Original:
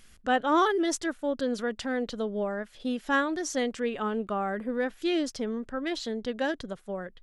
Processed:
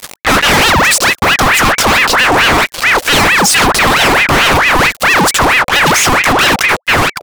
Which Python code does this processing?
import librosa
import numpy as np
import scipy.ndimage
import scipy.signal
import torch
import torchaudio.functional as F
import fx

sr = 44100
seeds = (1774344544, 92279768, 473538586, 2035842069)

y = fx.pitch_ramps(x, sr, semitones=2.5, every_ms=280)
y = fx.fuzz(y, sr, gain_db=54.0, gate_db=-49.0)
y = fx.ring_lfo(y, sr, carrier_hz=1400.0, swing_pct=65, hz=4.5)
y = y * librosa.db_to_amplitude(8.5)